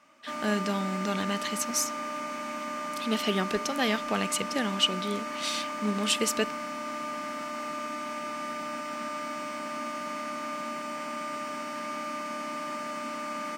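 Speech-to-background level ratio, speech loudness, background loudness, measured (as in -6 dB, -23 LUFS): 5.0 dB, -30.0 LUFS, -35.0 LUFS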